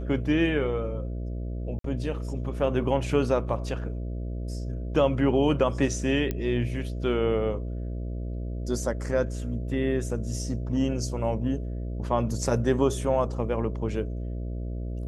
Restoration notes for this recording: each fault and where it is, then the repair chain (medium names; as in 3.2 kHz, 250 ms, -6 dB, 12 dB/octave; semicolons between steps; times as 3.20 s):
buzz 60 Hz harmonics 11 -32 dBFS
1.79–1.84 s: dropout 53 ms
6.31 s: pop -16 dBFS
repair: de-click; de-hum 60 Hz, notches 11; interpolate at 1.79 s, 53 ms